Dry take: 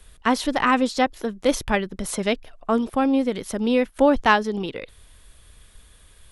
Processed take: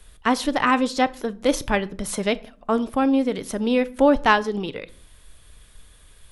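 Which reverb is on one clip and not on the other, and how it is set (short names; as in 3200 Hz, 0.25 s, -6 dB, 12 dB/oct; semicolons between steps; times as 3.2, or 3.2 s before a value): shoebox room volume 490 m³, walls furnished, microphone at 0.39 m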